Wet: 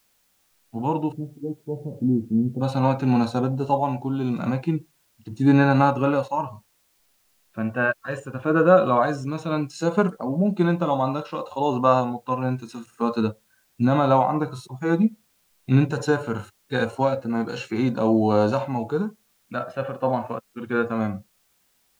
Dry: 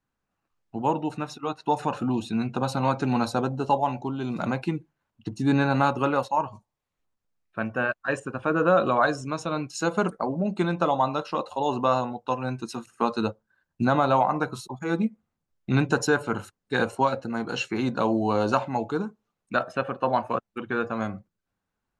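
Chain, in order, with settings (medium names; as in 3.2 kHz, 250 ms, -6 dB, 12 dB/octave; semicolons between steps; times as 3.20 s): 1.12–2.61 s: inverse Chebyshev low-pass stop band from 1.2 kHz, stop band 50 dB; harmonic-percussive split percussive -14 dB; word length cut 12-bit, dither triangular; trim +6 dB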